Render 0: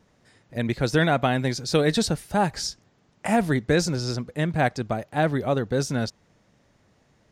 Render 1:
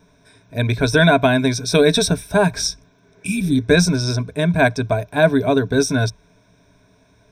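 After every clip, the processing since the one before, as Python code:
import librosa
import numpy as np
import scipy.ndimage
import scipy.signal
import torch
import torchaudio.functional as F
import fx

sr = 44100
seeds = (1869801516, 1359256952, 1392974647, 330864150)

y = fx.spec_repair(x, sr, seeds[0], start_s=3.02, length_s=0.54, low_hz=360.0, high_hz=2300.0, source='both')
y = fx.ripple_eq(y, sr, per_octave=1.6, db=15)
y = y * librosa.db_to_amplitude(4.5)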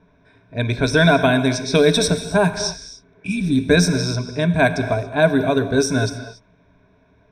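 y = fx.env_lowpass(x, sr, base_hz=2400.0, full_db=-11.5)
y = fx.rev_gated(y, sr, seeds[1], gate_ms=310, shape='flat', drr_db=9.5)
y = y * librosa.db_to_amplitude(-1.0)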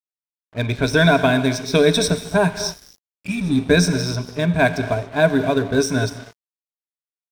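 y = np.sign(x) * np.maximum(np.abs(x) - 10.0 ** (-36.5 / 20.0), 0.0)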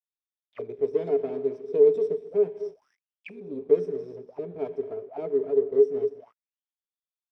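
y = fx.lower_of_two(x, sr, delay_ms=0.36)
y = fx.auto_wah(y, sr, base_hz=420.0, top_hz=3600.0, q=17.0, full_db=-22.0, direction='down')
y = y * librosa.db_to_amplitude(5.5)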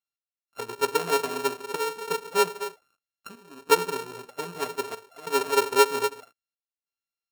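y = np.r_[np.sort(x[:len(x) // 32 * 32].reshape(-1, 32), axis=1).ravel(), x[len(x) // 32 * 32:]]
y = fx.step_gate(y, sr, bpm=94, pattern='x..xxxxxxx', floor_db=-12.0, edge_ms=4.5)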